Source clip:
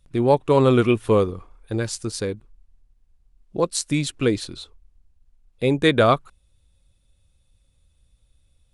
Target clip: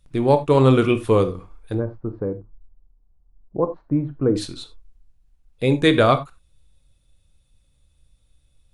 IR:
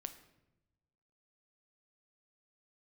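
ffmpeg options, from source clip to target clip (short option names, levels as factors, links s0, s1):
-filter_complex "[0:a]asettb=1/sr,asplit=3[s0][s1][s2];[s0]atrim=end=1.744[s3];[s1]atrim=start=1.74:end=4.36,asetpts=PTS-STARTPTS,afade=t=in:d=0.004:c=qsin,afade=t=out:st=2.616:d=0.004:c=qsin,lowpass=f=1100:w=0.5412,lowpass=f=1100:w=1.3066[s4];[s2]atrim=start=4.356[s5];[s3][s4]acrossfade=d=0.004:c1=hsin:c2=qsin[s6];[s6][s5]acrossfade=d=0.004:c1=qsin:c2=hsin[s7];[1:a]atrim=start_sample=2205,atrim=end_sample=4410[s8];[s7][s8]afir=irnorm=-1:irlink=0,volume=1.68"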